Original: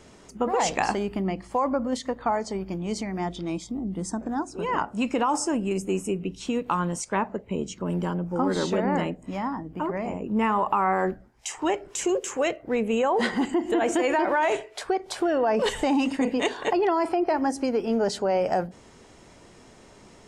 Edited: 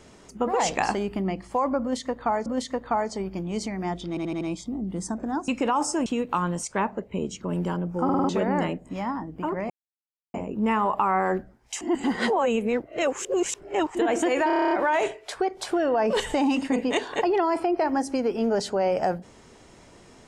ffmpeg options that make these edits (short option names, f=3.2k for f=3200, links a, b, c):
-filter_complex "[0:a]asplit=24[a][b][c][d][e][f][g][h][i][j][k][l][m][n][o][p][q][r][s][t][u][v][w][x];[a]atrim=end=2.462[y];[b]atrim=start=1.808:end=3.522[z];[c]atrim=start=3.438:end=3.522[aa];[d]atrim=start=3.438:end=3.522[ab];[e]atrim=start=3.438:end=3.522[ac];[f]atrim=start=3.438:end=4.512[ad];[g]atrim=start=5.008:end=5.592[ae];[h]atrim=start=6.428:end=8.462[af];[i]atrim=start=8.408:end=8.462[ag];[j]atrim=start=8.408:end=8.462[ah];[k]atrim=start=8.408:end=8.462[ai];[l]atrim=start=8.408:end=8.462[aj];[m]atrim=start=8.658:end=10.07,asetpts=PTS-STARTPTS,afade=t=out:st=1.408:d=0.004:c=hsin,apad=pad_dur=0.64[ak];[n]atrim=start=10.07:end=11.542,asetpts=PTS-STARTPTS,afade=t=in:d=0.004:c=hsin[al];[o]atrim=start=11.538:end=13.682,asetpts=PTS-STARTPTS,areverse[am];[p]atrim=start=13.678:end=14.232[an];[q]atrim=start=14.198:end=14.232[ao];[r]atrim=start=14.198:end=14.232[ap];[s]atrim=start=14.198:end=14.232[aq];[t]atrim=start=14.198:end=14.232[ar];[u]atrim=start=14.198:end=14.232[as];[v]atrim=start=14.198:end=14.232[at];[w]atrim=start=14.198:end=14.232[au];[x]atrim=start=14.198[av];[y][z]acrossfade=d=0.004:c1=hsin:c2=hsin[aw];[aw][aa]acrossfade=d=0.004:c1=hsin:c2=hsin[ax];[ax][ab]acrossfade=d=0.004:c1=hsin:c2=hsin[ay];[ay][ac]acrossfade=d=0.004:c1=hsin:c2=hsin[az];[az][ad]acrossfade=d=0.004:c1=hsin:c2=hsin[ba];[ba][ae]acrossfade=d=0.004:c1=hsin:c2=hsin[bb];[bb][af]acrossfade=d=0.004:c1=hsin:c2=hsin[bc];[bc][ag]acrossfade=d=0.004:c1=hsin:c2=hsin[bd];[bd][ah]acrossfade=d=0.004:c1=hsin:c2=hsin[be];[be][ai]acrossfade=d=0.004:c1=hsin:c2=hsin[bf];[bf][aj]acrossfade=d=0.004:c1=hsin:c2=hsin[bg];[ak][al]concat=n=2:v=0:a=1[bh];[bg][bh]acrossfade=d=0.004:c1=hsin:c2=hsin[bi];[bi][am]acrossfade=d=0.004:c1=hsin:c2=hsin[bj];[bj][an]acrossfade=d=0.004:c1=hsin:c2=hsin[bk];[bk][ao]acrossfade=d=0.004:c1=hsin:c2=hsin[bl];[bl][ap]acrossfade=d=0.004:c1=hsin:c2=hsin[bm];[bm][aq]acrossfade=d=0.004:c1=hsin:c2=hsin[bn];[bn][ar]acrossfade=d=0.004:c1=hsin:c2=hsin[bo];[bo][as]acrossfade=d=0.004:c1=hsin:c2=hsin[bp];[bp][at]acrossfade=d=0.004:c1=hsin:c2=hsin[bq];[bq][au]acrossfade=d=0.004:c1=hsin:c2=hsin[br];[br][av]acrossfade=d=0.004:c1=hsin:c2=hsin"